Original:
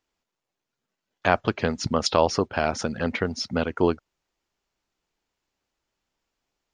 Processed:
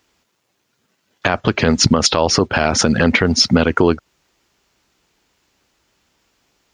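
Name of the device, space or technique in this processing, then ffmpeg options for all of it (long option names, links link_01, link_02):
mastering chain: -af "highpass=51,equalizer=frequency=720:width_type=o:width=1.4:gain=-3,acompressor=threshold=-25dB:ratio=2.5,alimiter=level_in=19.5dB:limit=-1dB:release=50:level=0:latency=1,volume=-1dB"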